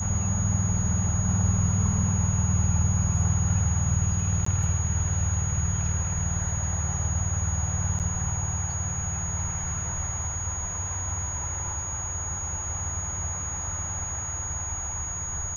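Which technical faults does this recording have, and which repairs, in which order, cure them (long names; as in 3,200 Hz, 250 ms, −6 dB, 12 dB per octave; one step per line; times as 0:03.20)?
whistle 6,700 Hz −31 dBFS
0:04.45–0:04.46: drop-out 14 ms
0:07.99–0:08.00: drop-out 8.2 ms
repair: notch filter 6,700 Hz, Q 30
repair the gap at 0:04.45, 14 ms
repair the gap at 0:07.99, 8.2 ms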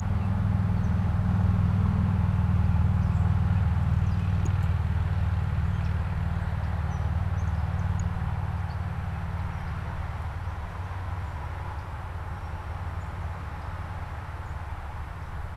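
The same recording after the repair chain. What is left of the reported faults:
whistle 6,700 Hz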